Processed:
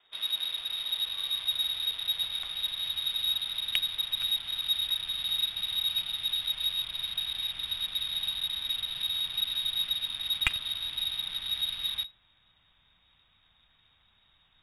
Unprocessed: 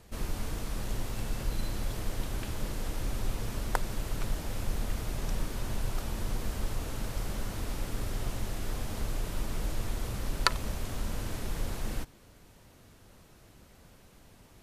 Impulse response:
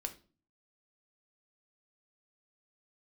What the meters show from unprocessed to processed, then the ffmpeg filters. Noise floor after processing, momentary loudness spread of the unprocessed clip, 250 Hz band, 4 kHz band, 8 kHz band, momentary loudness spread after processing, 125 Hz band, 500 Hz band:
−67 dBFS, 3 LU, below −20 dB, +17.5 dB, +0.5 dB, 4 LU, −19.0 dB, below −15 dB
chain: -af "lowpass=frequency=3200:width_type=q:width=0.5098,lowpass=frequency=3200:width_type=q:width=0.6013,lowpass=frequency=3200:width_type=q:width=0.9,lowpass=frequency=3200:width_type=q:width=2.563,afreqshift=-3800,asubboost=boost=12:cutoff=120,adynamicsmooth=sensitivity=5.5:basefreq=2000"

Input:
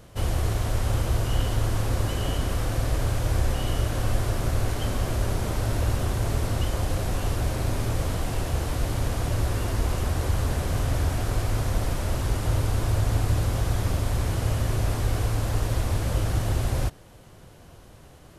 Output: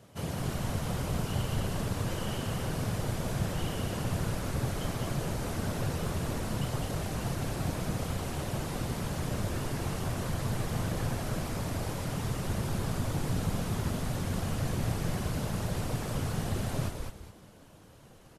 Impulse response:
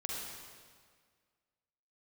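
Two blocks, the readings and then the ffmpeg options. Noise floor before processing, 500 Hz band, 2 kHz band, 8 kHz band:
−49 dBFS, −5.0 dB, −4.5 dB, −4.5 dB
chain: -filter_complex "[0:a]afftfilt=real='hypot(re,im)*cos(2*PI*random(0))':imag='hypot(re,im)*sin(2*PI*random(1))':win_size=512:overlap=0.75,highpass=frequency=86:width=0.5412,highpass=frequency=86:width=1.3066,asplit=5[link_01][link_02][link_03][link_04][link_05];[link_02]adelay=207,afreqshift=-100,volume=-4.5dB[link_06];[link_03]adelay=414,afreqshift=-200,volume=-15dB[link_07];[link_04]adelay=621,afreqshift=-300,volume=-25.4dB[link_08];[link_05]adelay=828,afreqshift=-400,volume=-35.9dB[link_09];[link_01][link_06][link_07][link_08][link_09]amix=inputs=5:normalize=0"

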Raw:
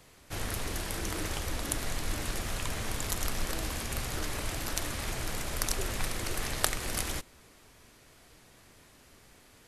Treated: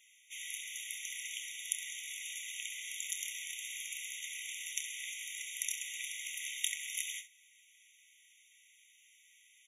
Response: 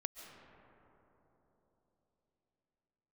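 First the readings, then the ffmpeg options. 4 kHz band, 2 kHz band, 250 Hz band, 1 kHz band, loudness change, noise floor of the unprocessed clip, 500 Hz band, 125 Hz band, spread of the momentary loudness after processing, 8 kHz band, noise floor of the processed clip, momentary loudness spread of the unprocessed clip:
−3.5 dB, −4.0 dB, below −40 dB, below −40 dB, −5.0 dB, −59 dBFS, below −40 dB, below −40 dB, 5 LU, −2.0 dB, −65 dBFS, 4 LU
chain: -filter_complex "[0:a]asplit=2[link_01][link_02];[link_02]aecho=0:1:28|66:0.316|0.224[link_03];[link_01][link_03]amix=inputs=2:normalize=0,afftfilt=real='re*eq(mod(floor(b*sr/1024/1900),2),1)':imag='im*eq(mod(floor(b*sr/1024/1900),2),1)':win_size=1024:overlap=0.75,volume=-1dB"

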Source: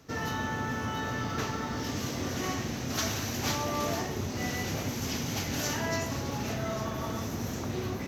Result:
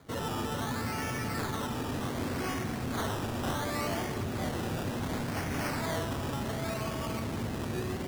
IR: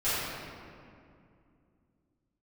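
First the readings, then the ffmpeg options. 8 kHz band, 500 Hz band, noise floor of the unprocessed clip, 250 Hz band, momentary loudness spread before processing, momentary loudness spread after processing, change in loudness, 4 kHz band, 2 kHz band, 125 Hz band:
−6.5 dB, −0.5 dB, −36 dBFS, −0.5 dB, 4 LU, 2 LU, −1.5 dB, −4.0 dB, −2.0 dB, −0.5 dB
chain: -filter_complex "[0:a]acrusher=samples=16:mix=1:aa=0.000001:lfo=1:lforange=9.6:lforate=0.68,asoftclip=type=tanh:threshold=-26.5dB,asplit=2[link_01][link_02];[1:a]atrim=start_sample=2205,asetrate=26460,aresample=44100[link_03];[link_02][link_03]afir=irnorm=-1:irlink=0,volume=-26dB[link_04];[link_01][link_04]amix=inputs=2:normalize=0"

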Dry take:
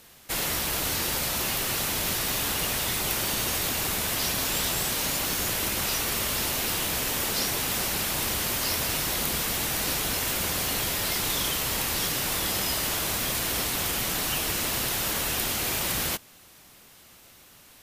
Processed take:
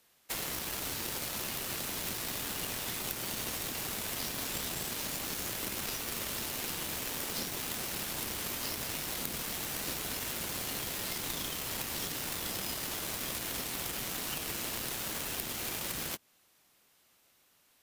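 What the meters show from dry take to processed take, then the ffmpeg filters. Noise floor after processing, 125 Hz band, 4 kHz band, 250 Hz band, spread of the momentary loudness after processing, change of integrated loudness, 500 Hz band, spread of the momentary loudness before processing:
−68 dBFS, −10.0 dB, −9.5 dB, −8.0 dB, 0 LU, −9.5 dB, −9.0 dB, 1 LU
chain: -filter_complex "[0:a]lowshelf=frequency=170:gain=-9.5,aeval=exprs='0.299*(cos(1*acos(clip(val(0)/0.299,-1,1)))-cos(1*PI/2))+0.0376*(cos(7*acos(clip(val(0)/0.299,-1,1)))-cos(7*PI/2))':channel_layout=same,acrossover=split=370[link_01][link_02];[link_02]acompressor=threshold=-36dB:ratio=6[link_03];[link_01][link_03]amix=inputs=2:normalize=0,volume=3.5dB"

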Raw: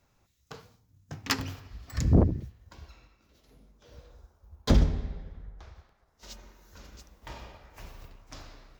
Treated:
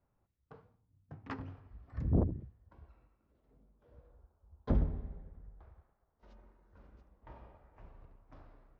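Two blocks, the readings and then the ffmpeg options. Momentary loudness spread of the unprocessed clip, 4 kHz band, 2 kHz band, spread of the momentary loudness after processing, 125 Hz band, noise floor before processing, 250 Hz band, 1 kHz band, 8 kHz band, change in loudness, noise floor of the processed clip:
23 LU, below −25 dB, −16.5 dB, 24 LU, −8.5 dB, −70 dBFS, −8.5 dB, −10.0 dB, below −35 dB, −8.5 dB, −79 dBFS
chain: -af "lowpass=1200,volume=-8.5dB"

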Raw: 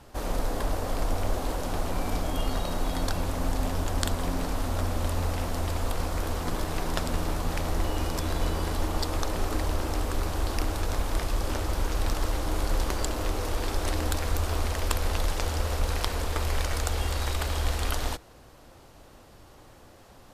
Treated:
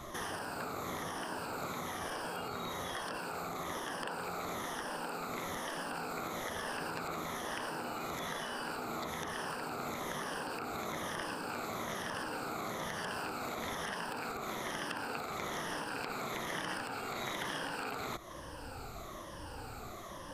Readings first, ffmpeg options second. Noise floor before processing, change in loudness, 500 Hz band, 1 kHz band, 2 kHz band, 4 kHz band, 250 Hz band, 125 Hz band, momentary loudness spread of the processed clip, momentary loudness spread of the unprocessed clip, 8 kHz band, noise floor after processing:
−52 dBFS, −9.0 dB, −7.5 dB, −4.0 dB, −2.0 dB, −7.0 dB, −9.0 dB, −19.0 dB, 3 LU, 2 LU, −9.0 dB, −46 dBFS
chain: -filter_complex "[0:a]afftfilt=real='re*pow(10,13/40*sin(2*PI*(1.2*log(max(b,1)*sr/1024/100)/log(2)-(-1.1)*(pts-256)/sr)))':imag='im*pow(10,13/40*sin(2*PI*(1.2*log(max(b,1)*sr/1024/100)/log(2)-(-1.1)*(pts-256)/sr)))':win_size=1024:overlap=0.75,acrossover=split=2700[link_01][link_02];[link_02]acompressor=threshold=-42dB:ratio=4:attack=1:release=60[link_03];[link_01][link_03]amix=inputs=2:normalize=0,equalizer=frequency=1200:width_type=o:width=0.73:gain=5.5,acompressor=threshold=-35dB:ratio=2.5,asoftclip=type=hard:threshold=-22.5dB,afftfilt=real='re*lt(hypot(re,im),0.0447)':imag='im*lt(hypot(re,im),0.0447)':win_size=1024:overlap=0.75,volume=3.5dB"

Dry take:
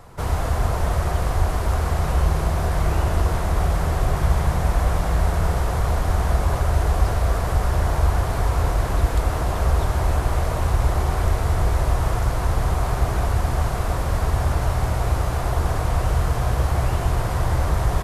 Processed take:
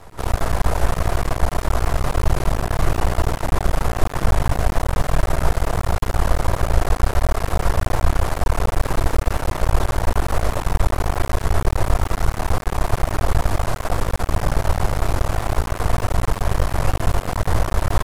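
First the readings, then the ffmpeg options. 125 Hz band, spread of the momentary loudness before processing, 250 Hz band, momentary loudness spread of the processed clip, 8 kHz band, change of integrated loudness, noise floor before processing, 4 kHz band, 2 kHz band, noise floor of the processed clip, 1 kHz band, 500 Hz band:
−1.5 dB, 2 LU, +2.0 dB, 2 LU, +2.5 dB, 0.0 dB, −25 dBFS, +2.5 dB, +2.5 dB, −32 dBFS, +1.5 dB, +2.0 dB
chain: -af "afreqshift=-21,aeval=exprs='max(val(0),0)':channel_layout=same,volume=5.5dB"

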